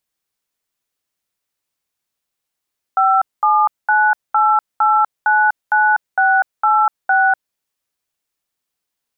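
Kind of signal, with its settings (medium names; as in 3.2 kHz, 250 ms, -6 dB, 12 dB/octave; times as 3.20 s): DTMF "5798899686", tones 246 ms, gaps 212 ms, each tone -13 dBFS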